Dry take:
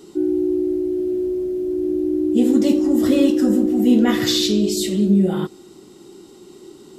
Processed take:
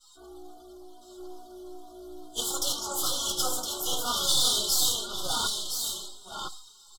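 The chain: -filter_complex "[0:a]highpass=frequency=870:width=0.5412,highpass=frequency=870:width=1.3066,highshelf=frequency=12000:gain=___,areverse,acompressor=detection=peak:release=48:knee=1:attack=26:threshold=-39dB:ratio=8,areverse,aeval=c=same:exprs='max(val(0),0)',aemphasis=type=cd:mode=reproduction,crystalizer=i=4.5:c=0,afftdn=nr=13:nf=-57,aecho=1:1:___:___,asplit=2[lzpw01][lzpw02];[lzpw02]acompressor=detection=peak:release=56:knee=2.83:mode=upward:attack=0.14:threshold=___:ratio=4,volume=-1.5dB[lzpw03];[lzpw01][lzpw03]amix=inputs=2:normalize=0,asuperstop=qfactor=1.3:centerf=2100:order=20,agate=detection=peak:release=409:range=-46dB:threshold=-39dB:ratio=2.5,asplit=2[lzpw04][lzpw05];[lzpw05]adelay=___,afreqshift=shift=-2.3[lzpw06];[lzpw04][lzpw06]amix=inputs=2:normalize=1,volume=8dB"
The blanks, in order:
-12, 1014, 0.501, -42dB, 3.3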